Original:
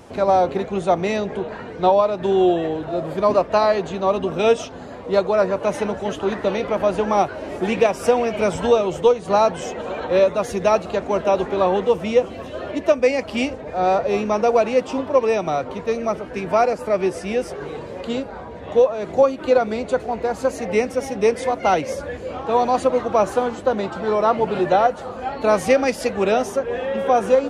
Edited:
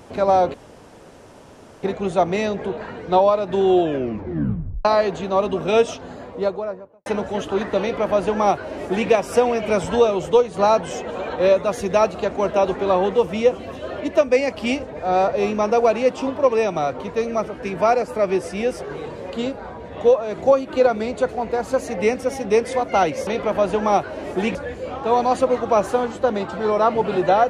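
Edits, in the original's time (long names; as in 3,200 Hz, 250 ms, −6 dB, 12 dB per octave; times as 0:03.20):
0:00.54: splice in room tone 1.29 s
0:02.53: tape stop 1.03 s
0:04.78–0:05.77: fade out and dull
0:06.52–0:07.80: duplicate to 0:21.98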